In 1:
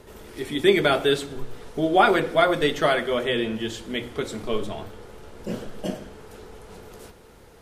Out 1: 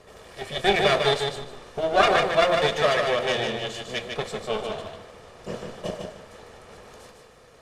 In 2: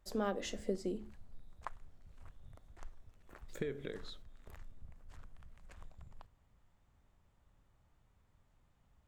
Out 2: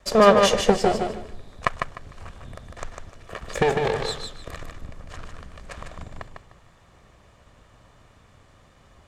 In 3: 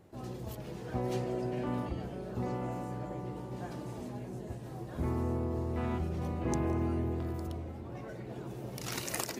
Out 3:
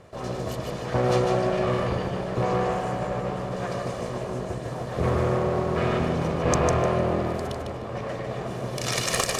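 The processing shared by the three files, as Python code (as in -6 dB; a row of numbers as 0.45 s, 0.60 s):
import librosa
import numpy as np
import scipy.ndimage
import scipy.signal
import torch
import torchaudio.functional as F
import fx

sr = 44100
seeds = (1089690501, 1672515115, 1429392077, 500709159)

p1 = fx.lower_of_two(x, sr, delay_ms=1.7)
p2 = scipy.signal.sosfilt(scipy.signal.butter(2, 8300.0, 'lowpass', fs=sr, output='sos'), p1)
p3 = fx.low_shelf(p2, sr, hz=94.0, db=-11.5)
p4 = p3 + fx.echo_feedback(p3, sr, ms=151, feedback_pct=23, wet_db=-5, dry=0)
y = p4 * 10.0 ** (-26 / 20.0) / np.sqrt(np.mean(np.square(p4)))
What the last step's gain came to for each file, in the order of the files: 0.0 dB, +22.5 dB, +13.5 dB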